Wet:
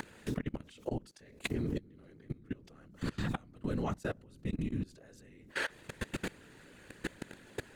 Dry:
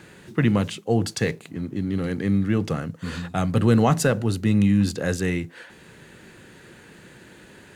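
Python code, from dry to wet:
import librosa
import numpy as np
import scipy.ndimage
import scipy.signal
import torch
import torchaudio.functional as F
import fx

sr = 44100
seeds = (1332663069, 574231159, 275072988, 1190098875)

y = fx.gate_flip(x, sr, shuts_db=-20.0, range_db=-27)
y = fx.whisperise(y, sr, seeds[0])
y = fx.level_steps(y, sr, step_db=23)
y = F.gain(torch.from_numpy(y), 12.5).numpy()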